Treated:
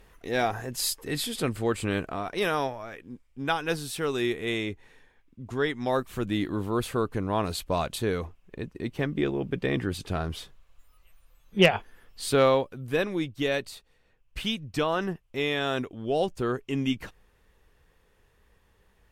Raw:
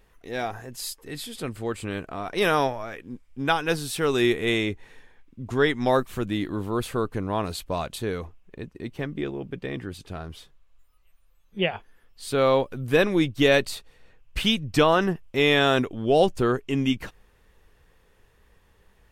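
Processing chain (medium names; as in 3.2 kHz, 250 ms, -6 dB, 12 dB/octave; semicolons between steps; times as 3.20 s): gain riding 0.5 s; Chebyshev shaper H 4 -15 dB, 6 -21 dB, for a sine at 1 dBFS; trim -4 dB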